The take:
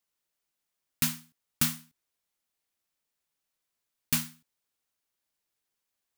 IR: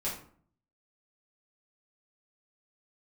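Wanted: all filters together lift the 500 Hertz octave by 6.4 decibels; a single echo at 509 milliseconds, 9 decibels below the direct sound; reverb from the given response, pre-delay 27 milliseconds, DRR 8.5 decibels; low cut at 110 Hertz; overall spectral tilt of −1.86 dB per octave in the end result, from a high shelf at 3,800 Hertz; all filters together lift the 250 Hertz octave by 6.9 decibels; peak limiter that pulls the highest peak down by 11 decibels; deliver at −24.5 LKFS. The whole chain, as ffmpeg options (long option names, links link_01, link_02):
-filter_complex "[0:a]highpass=110,equalizer=frequency=250:width_type=o:gain=7,equalizer=frequency=500:width_type=o:gain=6,highshelf=frequency=3800:gain=3.5,alimiter=limit=-18dB:level=0:latency=1,aecho=1:1:509:0.355,asplit=2[link_01][link_02];[1:a]atrim=start_sample=2205,adelay=27[link_03];[link_02][link_03]afir=irnorm=-1:irlink=0,volume=-13dB[link_04];[link_01][link_04]amix=inputs=2:normalize=0,volume=10dB"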